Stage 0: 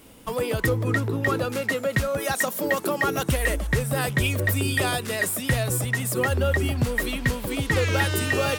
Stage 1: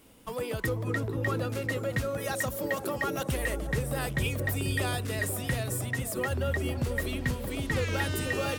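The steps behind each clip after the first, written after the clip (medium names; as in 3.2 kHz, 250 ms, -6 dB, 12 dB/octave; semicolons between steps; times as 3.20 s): feedback echo behind a low-pass 490 ms, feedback 47%, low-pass 650 Hz, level -5 dB; trim -7.5 dB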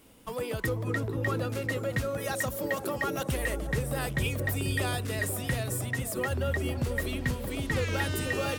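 no audible change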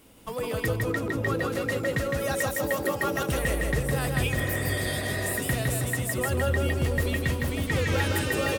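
feedback delay 160 ms, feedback 37%, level -3 dB; spectral replace 4.39–5.31 s, 240–3100 Hz; trim +2 dB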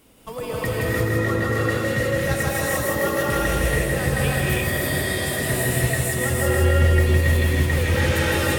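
gated-style reverb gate 370 ms rising, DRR -4.5 dB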